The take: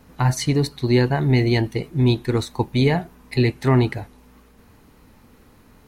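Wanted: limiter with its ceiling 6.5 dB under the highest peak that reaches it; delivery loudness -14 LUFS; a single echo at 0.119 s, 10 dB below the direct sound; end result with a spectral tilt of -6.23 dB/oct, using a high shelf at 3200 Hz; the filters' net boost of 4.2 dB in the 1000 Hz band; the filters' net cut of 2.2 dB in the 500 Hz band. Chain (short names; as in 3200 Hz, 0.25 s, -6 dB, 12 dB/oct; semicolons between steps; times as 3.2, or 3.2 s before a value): bell 500 Hz -4.5 dB; bell 1000 Hz +7 dB; high shelf 3200 Hz -3 dB; limiter -12 dBFS; echo 0.119 s -10 dB; gain +8.5 dB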